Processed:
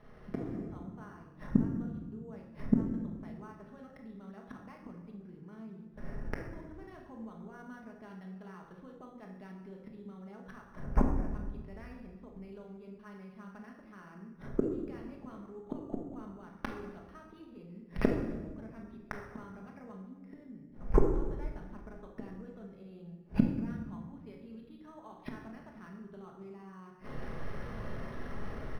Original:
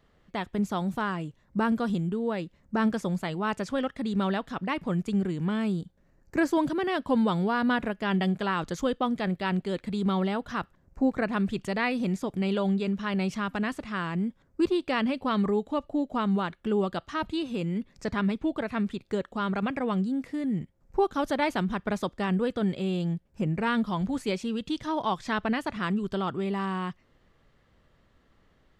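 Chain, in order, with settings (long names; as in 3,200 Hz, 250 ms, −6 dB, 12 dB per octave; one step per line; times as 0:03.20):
downward compressor 5 to 1, threshold −29 dBFS, peak gain reduction 9.5 dB
low-shelf EQ 390 Hz −4 dB
ambience of single reflections 36 ms −10 dB, 58 ms −15 dB
gate with flip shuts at −33 dBFS, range −40 dB
high-frequency loss of the air 350 metres
convolution reverb RT60 1.3 s, pre-delay 5 ms, DRR 1 dB
automatic gain control gain up to 14 dB
linearly interpolated sample-rate reduction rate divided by 6×
level +8 dB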